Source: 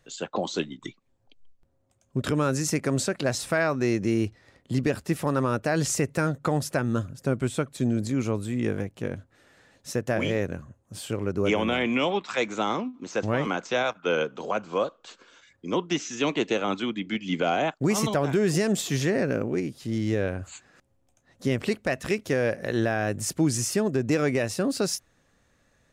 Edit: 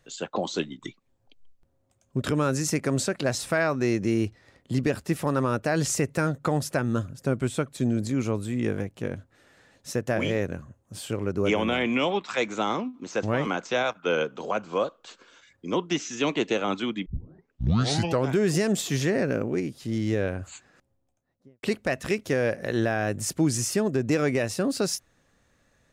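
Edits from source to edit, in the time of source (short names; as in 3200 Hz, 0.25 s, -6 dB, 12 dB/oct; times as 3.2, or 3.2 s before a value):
17.06 tape start 1.27 s
20.49–21.63 studio fade out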